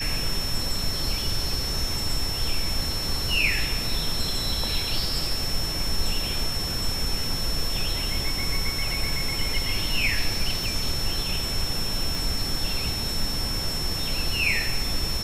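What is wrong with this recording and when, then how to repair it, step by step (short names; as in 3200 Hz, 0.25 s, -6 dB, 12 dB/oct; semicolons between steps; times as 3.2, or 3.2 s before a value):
tone 5400 Hz -29 dBFS
10.64 pop
12.15 pop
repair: de-click; notch 5400 Hz, Q 30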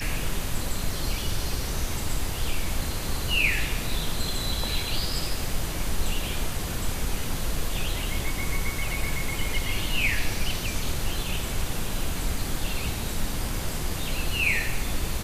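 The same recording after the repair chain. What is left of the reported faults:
12.15 pop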